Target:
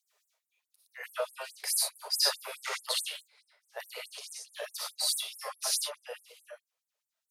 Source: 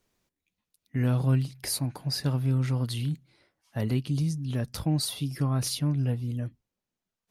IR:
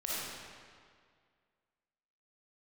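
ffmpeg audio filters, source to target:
-filter_complex "[0:a]asplit=3[a][b][c];[a]afade=t=out:st=2.13:d=0.02[d];[b]acontrast=51,afade=t=in:st=2.13:d=0.02,afade=t=out:st=3.12:d=0.02[e];[c]afade=t=in:st=3.12:d=0.02[f];[d][e][f]amix=inputs=3:normalize=0[g];[1:a]atrim=start_sample=2205,afade=t=out:st=0.16:d=0.01,atrim=end_sample=7497,asetrate=42336,aresample=44100[h];[g][h]afir=irnorm=-1:irlink=0,afftfilt=real='re*gte(b*sr/1024,400*pow(7600/400,0.5+0.5*sin(2*PI*4.7*pts/sr)))':imag='im*gte(b*sr/1024,400*pow(7600/400,0.5+0.5*sin(2*PI*4.7*pts/sr)))':win_size=1024:overlap=0.75,volume=2dB"

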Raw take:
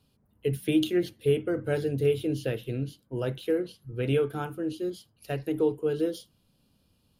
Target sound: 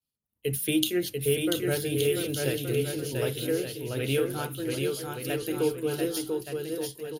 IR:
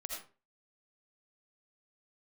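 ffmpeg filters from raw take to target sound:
-af "agate=range=-33dB:threshold=-53dB:ratio=3:detection=peak,aecho=1:1:690|1173|1511|1748|1913:0.631|0.398|0.251|0.158|0.1,crystalizer=i=4.5:c=0,volume=-2.5dB"

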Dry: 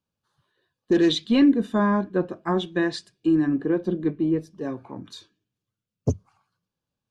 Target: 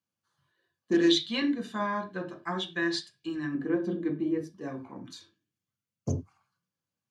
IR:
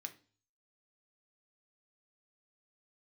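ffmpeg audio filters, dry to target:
-filter_complex "[0:a]asettb=1/sr,asplit=3[a][b][c];[a]atrim=end=1.064[d];[b]atrim=start=1.06:end=3.55,asetpts=PTS-STARTPTS,afade=t=in:d=0.004:c=qsin,afade=t=out:st=2.486:d=0.004:c=qsin,equalizer=f=250:t=o:w=1:g=-8,equalizer=f=500:t=o:w=1:g=-4,equalizer=f=4k:t=o:w=1:g=6[e];[c]atrim=start=3.546[f];[d][e]acrossfade=d=0.004:c1=hsin:c2=qsin[g];[g][f]acrossfade=d=0.004:c1=qsin:c2=hsin[h];[1:a]atrim=start_sample=2205,atrim=end_sample=4410,asetrate=38367,aresample=44100[i];[h][i]afir=irnorm=-1:irlink=0"

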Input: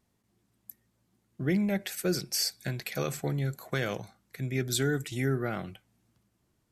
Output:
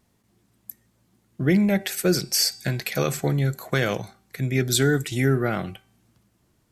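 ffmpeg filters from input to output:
-af "bandreject=f=387.2:t=h:w=4,bandreject=f=774.4:t=h:w=4,bandreject=f=1.1616k:t=h:w=4,bandreject=f=1.5488k:t=h:w=4,bandreject=f=1.936k:t=h:w=4,bandreject=f=2.3232k:t=h:w=4,bandreject=f=2.7104k:t=h:w=4,bandreject=f=3.0976k:t=h:w=4,bandreject=f=3.4848k:t=h:w=4,bandreject=f=3.872k:t=h:w=4,bandreject=f=4.2592k:t=h:w=4,bandreject=f=4.6464k:t=h:w=4,bandreject=f=5.0336k:t=h:w=4,bandreject=f=5.4208k:t=h:w=4,bandreject=f=5.808k:t=h:w=4,bandreject=f=6.1952k:t=h:w=4,bandreject=f=6.5824k:t=h:w=4,bandreject=f=6.9696k:t=h:w=4,bandreject=f=7.3568k:t=h:w=4,bandreject=f=7.744k:t=h:w=4,bandreject=f=8.1312k:t=h:w=4,bandreject=f=8.5184k:t=h:w=4,bandreject=f=8.9056k:t=h:w=4,volume=8dB"

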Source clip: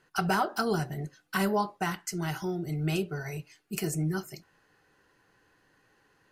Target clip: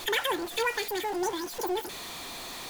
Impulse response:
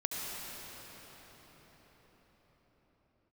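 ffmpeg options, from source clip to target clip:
-af "aeval=exprs='val(0)+0.5*0.0251*sgn(val(0))':c=same,asetrate=103194,aresample=44100,volume=-2dB"

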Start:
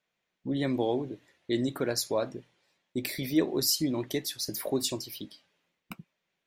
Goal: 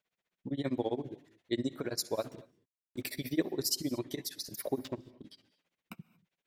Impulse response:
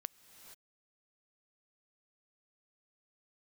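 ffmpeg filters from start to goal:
-filter_complex "[0:a]asettb=1/sr,asplit=3[a][b][c];[a]atrim=end=4.774[d];[b]atrim=start=4.77:end=5.24,asetpts=PTS-STARTPTS,afade=t=in:d=0.004:c=qsin,afade=t=out:st=0.466:d=0.004:c=qsin,adynamicsmooth=sensitivity=3:basefreq=540[e];[c]atrim=start=5.236[f];[d][e]acrossfade=d=0.004:c1=hsin:c2=qsin[g];[g][f]acrossfade=d=0.004:c1=qsin:c2=hsin,tremolo=f=15:d=0.97,asettb=1/sr,asplit=3[h][i][j];[h]atrim=end=2.164[k];[i]atrim=start=2.16:end=3.11,asetpts=PTS-STARTPTS,afade=t=in:d=0.004:c=qsin,afade=t=out:st=0.946:d=0.004:c=qsin,acrusher=bits=8:mix=0:aa=0.5[l];[j]atrim=start=3.106[m];[k][l]acrossfade=d=0.004:c1=hsin:c2=qsin[n];[n][m]acrossfade=d=0.004:c1=qsin:c2=hsin[o];[1:a]atrim=start_sample=2205,afade=t=out:st=0.29:d=0.01,atrim=end_sample=13230[p];[o][p]afir=irnorm=-1:irlink=0,volume=3dB"

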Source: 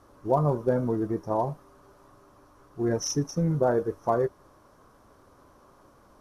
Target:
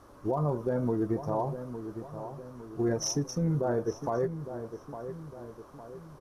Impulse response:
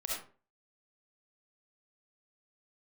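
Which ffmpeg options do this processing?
-filter_complex "[0:a]alimiter=limit=-22.5dB:level=0:latency=1:release=195,asplit=2[a][b];[b]adelay=858,lowpass=f=1.9k:p=1,volume=-10dB,asplit=2[c][d];[d]adelay=858,lowpass=f=1.9k:p=1,volume=0.5,asplit=2[e][f];[f]adelay=858,lowpass=f=1.9k:p=1,volume=0.5,asplit=2[g][h];[h]adelay=858,lowpass=f=1.9k:p=1,volume=0.5,asplit=2[i][j];[j]adelay=858,lowpass=f=1.9k:p=1,volume=0.5[k];[a][c][e][g][i][k]amix=inputs=6:normalize=0,volume=2dB"

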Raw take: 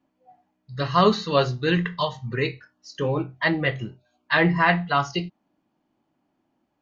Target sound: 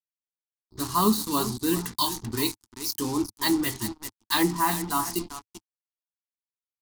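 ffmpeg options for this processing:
-filter_complex "[0:a]asettb=1/sr,asplit=3[a][b][c];[a]atrim=end=1.864[d];[b]atrim=start=1.86:end=4.43,asetpts=PTS-STARTPTS,afade=t=in:d=0.004:c=qsin,afade=t=out:st=2.566:d=0.004:c=qsin,equalizer=f=5.1k:w=0.56:g=11[e];[c]atrim=start=4.426[f];[d][e]acrossfade=d=0.004:c1=hsin:c2=qsin[g];[g][f]acrossfade=d=0.004:c1=qsin:c2=hsin,aecho=1:1:388:0.237,acrusher=bits=4:mix=0:aa=0.5,firequalizer=gain_entry='entry(100,0);entry(150,-20);entry(210,0);entry(310,2);entry(540,-23);entry(890,-2);entry(1600,-16);entry(2700,-15);entry(4600,-2);entry(10000,8)':delay=0.05:min_phase=1,volume=2dB"

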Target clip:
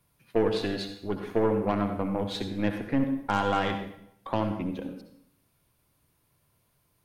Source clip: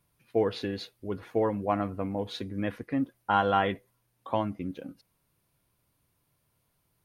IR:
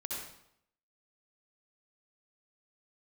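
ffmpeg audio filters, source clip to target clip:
-filter_complex "[0:a]acrossover=split=370|3000[a][b][c];[b]acompressor=threshold=-33dB:ratio=2[d];[a][d][c]amix=inputs=3:normalize=0,aeval=exprs='0.168*(cos(1*acos(clip(val(0)/0.168,-1,1)))-cos(1*PI/2))+0.015*(cos(6*acos(clip(val(0)/0.168,-1,1)))-cos(6*PI/2))':c=same,asplit=2[e][f];[1:a]atrim=start_sample=2205[g];[f][g]afir=irnorm=-1:irlink=0,volume=-3.5dB[h];[e][h]amix=inputs=2:normalize=0"

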